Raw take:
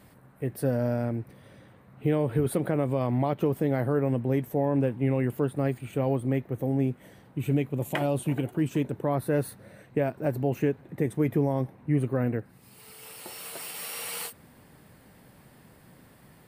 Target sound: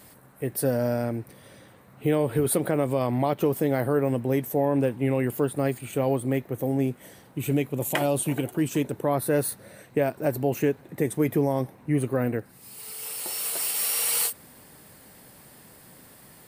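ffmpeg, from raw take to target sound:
-af "bass=f=250:g=-5,treble=f=4k:g=9,volume=3.5dB"

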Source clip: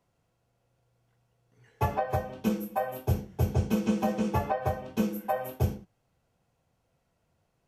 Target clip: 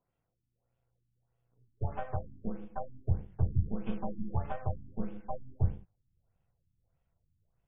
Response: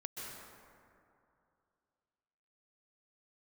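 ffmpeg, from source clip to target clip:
-af "aeval=exprs='if(lt(val(0),0),0.447*val(0),val(0))':c=same,asubboost=boost=4.5:cutoff=120,afftfilt=real='re*lt(b*sr/1024,330*pow(3700/330,0.5+0.5*sin(2*PI*1.6*pts/sr)))':imag='im*lt(b*sr/1024,330*pow(3700/330,0.5+0.5*sin(2*PI*1.6*pts/sr)))':win_size=1024:overlap=0.75,volume=-7dB"

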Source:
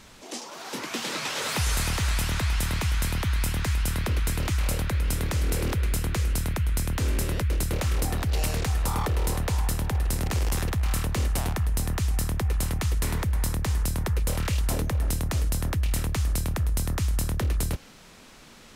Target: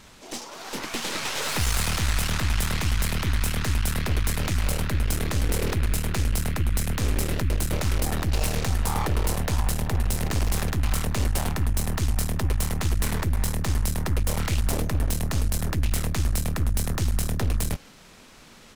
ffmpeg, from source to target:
-filter_complex "[0:a]asplit=2[a][b];[b]asetrate=33038,aresample=44100,atempo=1.33484,volume=-15dB[c];[a][c]amix=inputs=2:normalize=0,aeval=exprs='0.168*(cos(1*acos(clip(val(0)/0.168,-1,1)))-cos(1*PI/2))+0.0299*(cos(6*acos(clip(val(0)/0.168,-1,1)))-cos(6*PI/2))':c=same"

